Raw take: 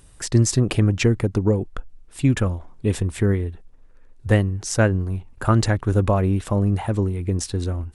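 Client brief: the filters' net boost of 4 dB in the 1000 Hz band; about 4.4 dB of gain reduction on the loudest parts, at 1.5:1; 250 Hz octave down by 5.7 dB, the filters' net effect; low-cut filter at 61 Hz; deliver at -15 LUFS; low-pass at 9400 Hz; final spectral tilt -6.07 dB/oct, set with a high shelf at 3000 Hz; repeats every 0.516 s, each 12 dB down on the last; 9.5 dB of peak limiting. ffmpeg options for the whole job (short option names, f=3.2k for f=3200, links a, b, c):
-af "highpass=61,lowpass=9.4k,equalizer=f=250:t=o:g=-8,equalizer=f=1k:t=o:g=6.5,highshelf=f=3k:g=-6,acompressor=threshold=-25dB:ratio=1.5,alimiter=limit=-18dB:level=0:latency=1,aecho=1:1:516|1032|1548:0.251|0.0628|0.0157,volume=13.5dB"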